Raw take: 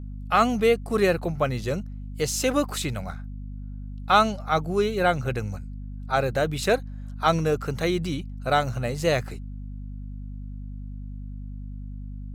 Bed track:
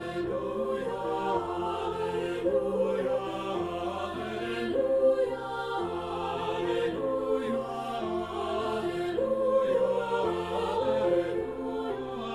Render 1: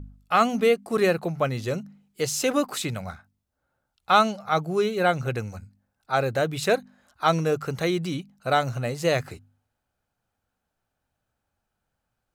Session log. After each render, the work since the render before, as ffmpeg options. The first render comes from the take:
-af "bandreject=f=50:t=h:w=4,bandreject=f=100:t=h:w=4,bandreject=f=150:t=h:w=4,bandreject=f=200:t=h:w=4,bandreject=f=250:t=h:w=4"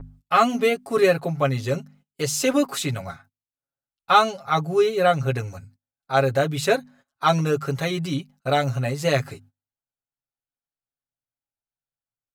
-af "agate=range=-24dB:threshold=-51dB:ratio=16:detection=peak,aecho=1:1:7.3:0.86"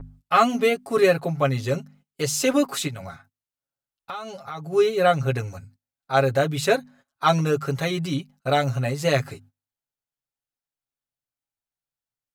-filter_complex "[0:a]asplit=3[a][b][c];[a]afade=t=out:st=2.87:d=0.02[d];[b]acompressor=threshold=-31dB:ratio=6:attack=3.2:release=140:knee=1:detection=peak,afade=t=in:st=2.87:d=0.02,afade=t=out:st=4.72:d=0.02[e];[c]afade=t=in:st=4.72:d=0.02[f];[d][e][f]amix=inputs=3:normalize=0"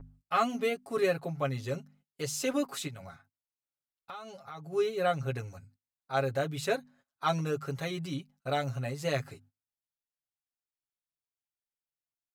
-af "volume=-10dB"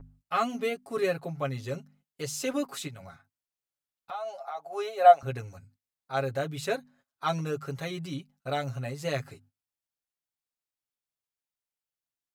-filter_complex "[0:a]asettb=1/sr,asplit=3[a][b][c];[a]atrim=end=4.114[d];[b]atrim=start=4.11:end=5.23,asetpts=PTS-STARTPTS,afade=t=in:d=0.004:c=qsin,afade=t=out:st=1.116:d=0.004:c=qsin,highpass=f=690:t=q:w=6[e];[c]atrim=start=5.226[f];[d][e]acrossfade=d=0.004:c1=hsin:c2=qsin[g];[g][f]acrossfade=d=0.004:c1=qsin:c2=hsin"

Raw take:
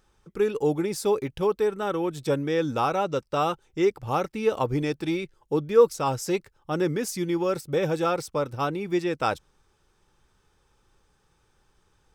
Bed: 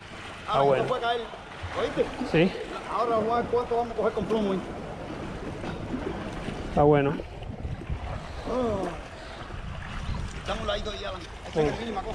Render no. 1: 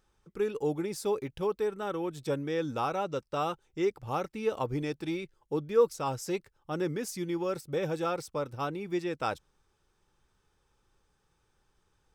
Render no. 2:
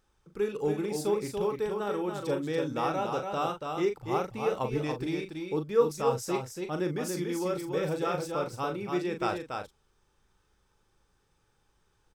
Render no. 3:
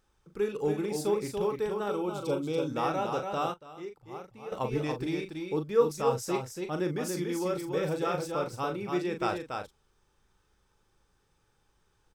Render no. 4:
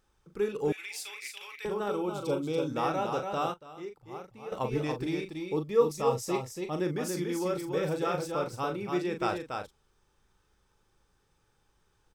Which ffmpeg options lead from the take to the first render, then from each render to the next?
-af "volume=-6.5dB"
-filter_complex "[0:a]asplit=2[a][b];[b]adelay=39,volume=-7.5dB[c];[a][c]amix=inputs=2:normalize=0,aecho=1:1:285:0.562"
-filter_complex "[0:a]asettb=1/sr,asplit=3[a][b][c];[a]atrim=end=1.904[d];[b]atrim=start=1.9:end=2.68,asetpts=PTS-STARTPTS,afade=t=in:d=0.004:c=qsin,afade=t=out:st=0.776:d=0.004:c=qsin,asuperstop=centerf=1800:order=4:qfactor=2.6[e];[c]atrim=start=2.676[f];[d][e]acrossfade=d=0.004:c1=hsin:c2=qsin[g];[g][f]acrossfade=d=0.004:c1=qsin:c2=hsin,asplit=3[h][i][j];[h]atrim=end=3.54,asetpts=PTS-STARTPTS,afade=t=out:st=3.31:d=0.23:c=log:silence=0.223872[k];[i]atrim=start=3.54:end=4.52,asetpts=PTS-STARTPTS,volume=-13dB[l];[j]atrim=start=4.52,asetpts=PTS-STARTPTS,afade=t=in:d=0.23:c=log:silence=0.223872[m];[k][l][m]concat=n=3:v=0:a=1"
-filter_complex "[0:a]asettb=1/sr,asplit=3[a][b][c];[a]atrim=end=0.724[d];[b]atrim=start=0.72:end=1.65,asetpts=PTS-STARTPTS,afade=t=in:d=0.004:c=qsin,afade=t=out:st=0.926:d=0.004:c=qsin,highpass=f=2.3k:t=q:w=3.1[e];[c]atrim=start=1.646[f];[d][e]acrossfade=d=0.004:c1=hsin:c2=qsin[g];[g][f]acrossfade=d=0.004:c1=qsin:c2=hsin,asettb=1/sr,asplit=3[h][i][j];[h]atrim=end=5.284[k];[i]atrim=start=5.28:end=6.81,asetpts=PTS-STARTPTS,afade=t=in:d=0.004:c=qsin,afade=t=out:st=1.526:d=0.004:c=qsin,asuperstop=centerf=1500:order=4:qfactor=5[l];[j]atrim=start=6.806[m];[k][l]acrossfade=d=0.004:c1=hsin:c2=qsin[n];[n][m]acrossfade=d=0.004:c1=qsin:c2=hsin"

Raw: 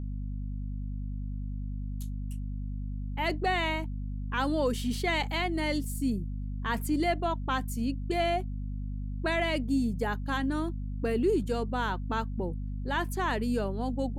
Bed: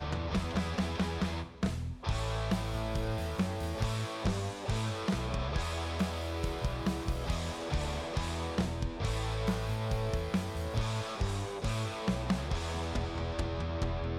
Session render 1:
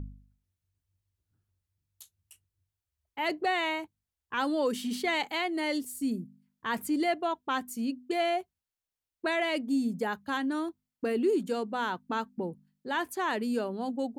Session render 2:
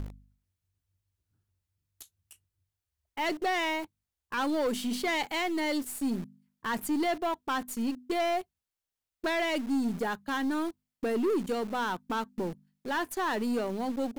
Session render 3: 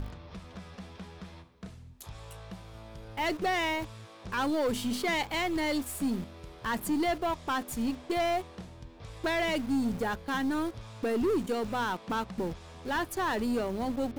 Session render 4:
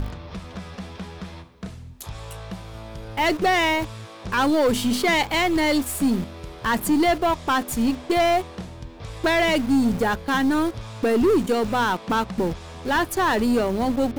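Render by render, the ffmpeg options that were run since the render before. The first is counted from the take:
-af "bandreject=f=50:t=h:w=4,bandreject=f=100:t=h:w=4,bandreject=f=150:t=h:w=4,bandreject=f=200:t=h:w=4,bandreject=f=250:t=h:w=4"
-filter_complex "[0:a]asplit=2[a][b];[b]acrusher=bits=4:dc=4:mix=0:aa=0.000001,volume=-4dB[c];[a][c]amix=inputs=2:normalize=0,asoftclip=type=tanh:threshold=-23dB"
-filter_complex "[1:a]volume=-12.5dB[a];[0:a][a]amix=inputs=2:normalize=0"
-af "volume=9.5dB"

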